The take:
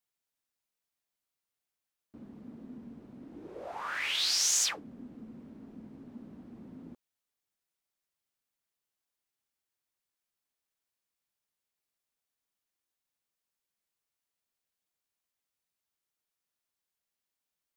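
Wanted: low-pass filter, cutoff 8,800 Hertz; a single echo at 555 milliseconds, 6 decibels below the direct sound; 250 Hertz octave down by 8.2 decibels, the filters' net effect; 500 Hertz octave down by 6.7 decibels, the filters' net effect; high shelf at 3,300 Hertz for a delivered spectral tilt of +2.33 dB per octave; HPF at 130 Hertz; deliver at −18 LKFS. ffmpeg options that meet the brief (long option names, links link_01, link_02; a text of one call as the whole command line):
ffmpeg -i in.wav -af "highpass=130,lowpass=8800,equalizer=frequency=250:width_type=o:gain=-7.5,equalizer=frequency=500:width_type=o:gain=-7,highshelf=frequency=3300:gain=5.5,aecho=1:1:555:0.501,volume=7.5dB" out.wav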